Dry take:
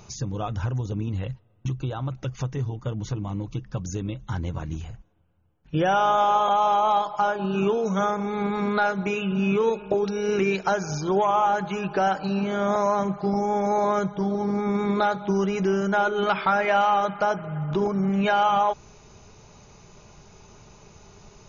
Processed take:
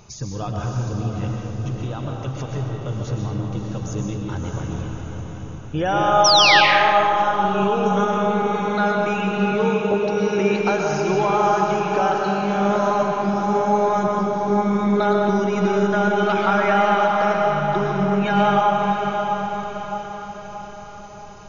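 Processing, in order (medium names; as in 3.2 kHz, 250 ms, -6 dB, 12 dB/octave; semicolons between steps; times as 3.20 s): echo that smears into a reverb 616 ms, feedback 51%, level -5.5 dB; painted sound fall, 6.24–6.61 s, 1.5–6.1 kHz -16 dBFS; algorithmic reverb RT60 1.9 s, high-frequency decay 0.65×, pre-delay 85 ms, DRR 0.5 dB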